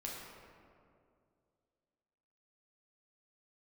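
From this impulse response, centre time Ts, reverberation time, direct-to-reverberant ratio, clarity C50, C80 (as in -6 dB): 0.109 s, 2.3 s, -4.0 dB, 0.0 dB, 1.5 dB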